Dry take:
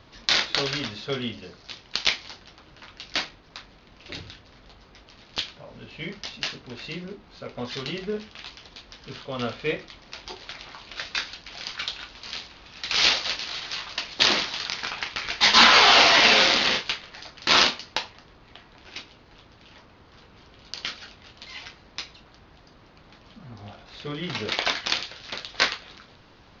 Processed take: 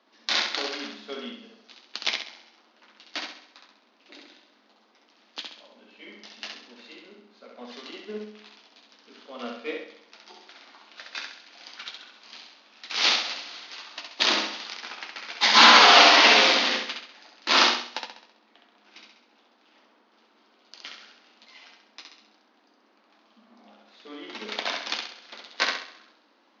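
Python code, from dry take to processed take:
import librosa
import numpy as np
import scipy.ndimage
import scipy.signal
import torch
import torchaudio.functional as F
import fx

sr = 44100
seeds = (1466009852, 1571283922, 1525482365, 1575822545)

y = scipy.signal.sosfilt(scipy.signal.cheby1(6, 3, 210.0, 'highpass', fs=sr, output='sos'), x)
y = fx.echo_feedback(y, sr, ms=66, feedback_pct=54, wet_db=-3)
y = fx.upward_expand(y, sr, threshold_db=-36.0, expansion=1.5)
y = y * 10.0 ** (2.0 / 20.0)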